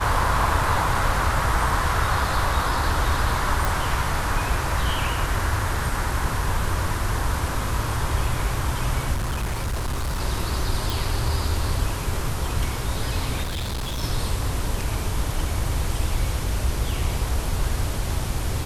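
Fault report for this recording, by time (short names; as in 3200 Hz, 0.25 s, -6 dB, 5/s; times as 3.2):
3.65 pop
9.14–10.21 clipped -22 dBFS
10.9 pop
13.43–14.04 clipped -24.5 dBFS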